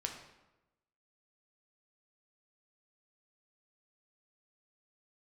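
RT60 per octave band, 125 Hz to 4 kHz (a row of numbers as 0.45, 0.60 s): 1.1, 1.1, 1.0, 1.0, 0.85, 0.70 s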